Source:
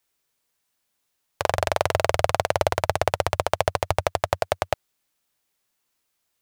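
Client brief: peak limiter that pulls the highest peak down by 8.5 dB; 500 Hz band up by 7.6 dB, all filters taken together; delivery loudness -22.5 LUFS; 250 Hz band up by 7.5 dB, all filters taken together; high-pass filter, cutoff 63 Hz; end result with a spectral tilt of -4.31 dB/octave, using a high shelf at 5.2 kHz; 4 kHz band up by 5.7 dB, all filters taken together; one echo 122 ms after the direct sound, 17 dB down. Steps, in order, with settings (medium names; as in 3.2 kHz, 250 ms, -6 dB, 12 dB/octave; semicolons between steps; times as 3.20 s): high-pass 63 Hz; peaking EQ 250 Hz +8 dB; peaking EQ 500 Hz +8 dB; peaking EQ 4 kHz +3.5 dB; treble shelf 5.2 kHz +8.5 dB; peak limiter -4.5 dBFS; delay 122 ms -17 dB; trim +3.5 dB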